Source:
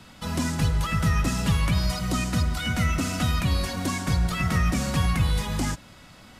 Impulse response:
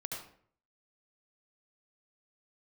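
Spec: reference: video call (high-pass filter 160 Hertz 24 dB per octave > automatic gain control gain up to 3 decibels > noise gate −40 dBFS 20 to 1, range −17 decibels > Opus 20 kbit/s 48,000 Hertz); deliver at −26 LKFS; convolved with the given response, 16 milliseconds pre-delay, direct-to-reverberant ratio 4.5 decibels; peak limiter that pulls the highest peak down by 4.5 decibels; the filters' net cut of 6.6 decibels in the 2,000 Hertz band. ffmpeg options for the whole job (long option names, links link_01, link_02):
-filter_complex "[0:a]equalizer=frequency=2000:width_type=o:gain=-8.5,alimiter=limit=-18dB:level=0:latency=1,asplit=2[link_01][link_02];[1:a]atrim=start_sample=2205,adelay=16[link_03];[link_02][link_03]afir=irnorm=-1:irlink=0,volume=-5dB[link_04];[link_01][link_04]amix=inputs=2:normalize=0,highpass=frequency=160:width=0.5412,highpass=frequency=160:width=1.3066,dynaudnorm=maxgain=3dB,agate=range=-17dB:threshold=-40dB:ratio=20,volume=3.5dB" -ar 48000 -c:a libopus -b:a 20k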